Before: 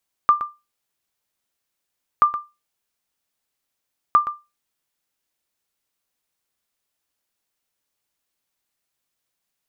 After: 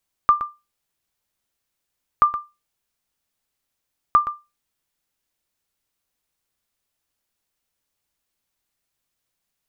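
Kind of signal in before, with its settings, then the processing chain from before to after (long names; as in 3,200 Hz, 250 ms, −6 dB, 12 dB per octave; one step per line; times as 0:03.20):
ping with an echo 1,190 Hz, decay 0.24 s, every 1.93 s, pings 3, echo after 0.12 s, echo −12.5 dB −6 dBFS
low-shelf EQ 120 Hz +8.5 dB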